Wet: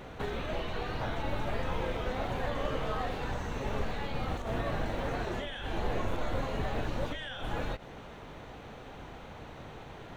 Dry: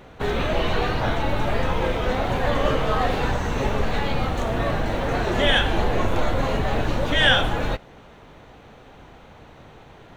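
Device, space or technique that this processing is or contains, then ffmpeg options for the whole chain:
de-esser from a sidechain: -filter_complex "[0:a]asplit=2[a][b];[b]highpass=6.2k,apad=whole_len=448209[c];[a][c]sidechaincompress=threshold=-55dB:ratio=6:attack=0.5:release=84"

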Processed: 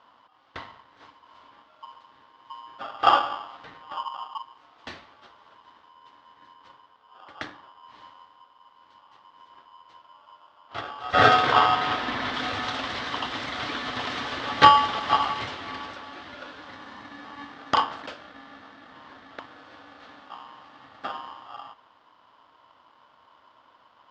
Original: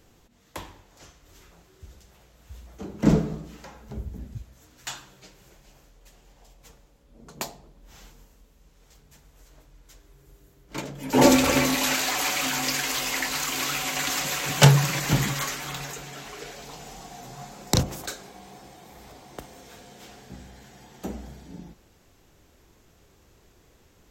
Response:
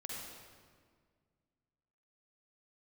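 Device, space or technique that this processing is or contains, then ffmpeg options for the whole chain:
ring modulator pedal into a guitar cabinet: -filter_complex "[0:a]asettb=1/sr,asplit=3[a][b][c];[a]atrim=end=11.524[d];[b]atrim=start=11.52:end=12.34,asetpts=PTS-STARTPTS,afade=t=in:d=0.004:c=qsin,afade=t=out:st=0.816:d=0.004:c=qsin,aemphasis=mode=reproduction:type=bsi[e];[c]atrim=start=12.336[f];[d][e]acrossfade=d=0.004:c1=hsin:c2=qsin[g];[g][f]acrossfade=d=0.004:c1=qsin:c2=hsin,aeval=exprs='val(0)*sgn(sin(2*PI*1000*n/s))':c=same,highpass=77,equalizer=f=170:t=q:w=4:g=-7,equalizer=f=280:t=q:w=4:g=4,equalizer=f=410:t=q:w=4:g=-3,equalizer=f=1.1k:t=q:w=4:g=3,equalizer=f=2.5k:t=q:w=4:g=-6,lowpass=f=3.7k:w=0.5412,lowpass=f=3.7k:w=1.3066"

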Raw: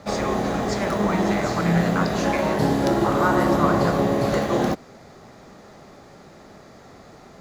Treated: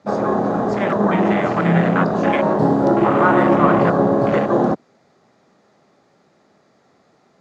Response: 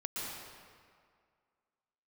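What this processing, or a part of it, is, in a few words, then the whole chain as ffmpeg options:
over-cleaned archive recording: -af "highpass=140,lowpass=7.8k,afwtdn=0.0355,volume=5.5dB"

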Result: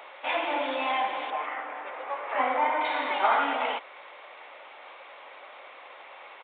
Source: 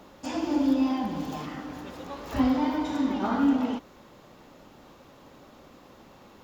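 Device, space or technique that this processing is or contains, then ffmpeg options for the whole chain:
musical greeting card: -filter_complex "[0:a]aresample=8000,aresample=44100,highpass=f=580:w=0.5412,highpass=f=580:w=1.3066,equalizer=f=2.2k:t=o:w=0.4:g=10,asettb=1/sr,asplit=3[a][b][c];[a]atrim=end=1.304[d];[b]atrim=start=1.3:end=2.81,asetpts=PTS-STARTPTS,afade=t=in:d=0.004:c=qsin,afade=t=out:st=1.506:d=0.004:c=qsin,lowpass=1.8k[e];[c]atrim=start=2.806[f];[d][e]acrossfade=d=0.004:c1=hsin:c2=qsin[g];[g][f]acrossfade=d=0.004:c1=qsin:c2=hsin,volume=8dB"

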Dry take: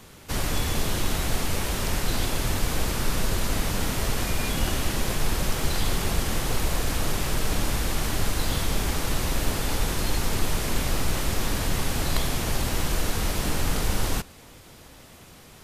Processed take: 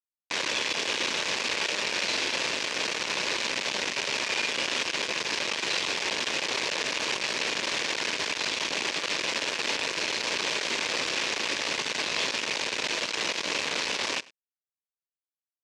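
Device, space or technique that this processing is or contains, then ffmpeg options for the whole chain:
hand-held game console: -filter_complex "[0:a]asettb=1/sr,asplit=3[a][b][c];[a]atrim=end=0.884[d];[b]atrim=start=0.88:end=2.69,asetpts=PTS-STARTPTS,afade=t=in:d=0.004:c=qsin,afade=t=out:st=1.806:d=0.004:c=qsin,asplit=2[e][f];[f]adelay=45,volume=-6dB[g];[e][g]amix=inputs=2:normalize=0,atrim=end_sample=79821[h];[c]atrim=start=2.686[i];[d][h]acrossfade=d=0.004:c1=hsin:c2=qsin[j];[j][i]acrossfade=d=0.004:c1=qsin:c2=hsin,acrusher=bits=3:mix=0:aa=0.000001,highpass=480,equalizer=f=750:t=q:w=4:g=-8,equalizer=f=1.3k:t=q:w=4:g=-7,equalizer=f=2.5k:t=q:w=4:g=5,lowpass=f=5.9k:w=0.5412,lowpass=f=5.9k:w=1.3066,aecho=1:1:100:0.075"

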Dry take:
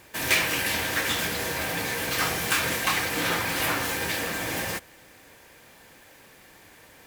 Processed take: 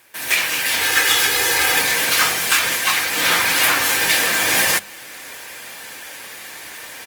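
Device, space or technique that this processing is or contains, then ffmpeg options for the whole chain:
video call: -filter_complex "[0:a]tiltshelf=f=790:g=-6,bandreject=f=50:t=h:w=6,bandreject=f=100:t=h:w=6,bandreject=f=150:t=h:w=6,bandreject=f=200:t=h:w=6,asettb=1/sr,asplit=3[a][b][c];[a]atrim=end=0.814[d];[b]atrim=start=0.81:end=1.81,asetpts=PTS-STARTPTS,afade=t=in:d=0.004:c=qsin,afade=t=out:st=0.996:d=0.004:c=qsin,aecho=1:1:2.4:0.77,atrim=end_sample=44100[e];[c]atrim=start=1.806[f];[d][e]acrossfade=d=0.004:c1=hsin:c2=qsin[g];[g][f]acrossfade=d=0.004:c1=qsin:c2=hsin,highpass=f=110:p=1,asplit=2[h][i];[i]adelay=227.4,volume=-30dB,highshelf=f=4k:g=-5.12[j];[h][j]amix=inputs=2:normalize=0,dynaudnorm=f=110:g=5:m=15.5dB,volume=-2dB" -ar 48000 -c:a libopus -b:a 24k

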